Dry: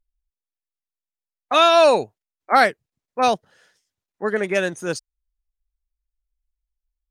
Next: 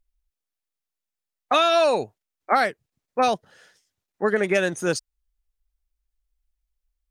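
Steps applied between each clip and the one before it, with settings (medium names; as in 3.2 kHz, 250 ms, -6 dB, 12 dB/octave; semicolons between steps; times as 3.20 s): band-stop 1 kHz, Q 24; compression 6:1, threshold -20 dBFS, peak gain reduction 10 dB; trim +3.5 dB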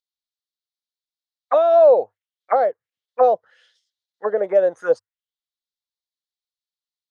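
auto-wah 630–4000 Hz, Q 3.2, down, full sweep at -17.5 dBFS; graphic EQ with 31 bands 100 Hz +10 dB, 500 Hz +11 dB, 2.5 kHz -8 dB; trim +6 dB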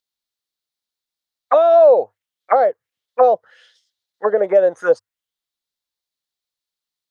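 compression 1.5:1, threshold -22 dBFS, peak gain reduction 5 dB; trim +6.5 dB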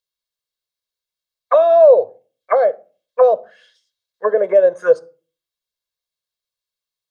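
reverberation RT60 0.35 s, pre-delay 6 ms, DRR 15 dB; trim -3 dB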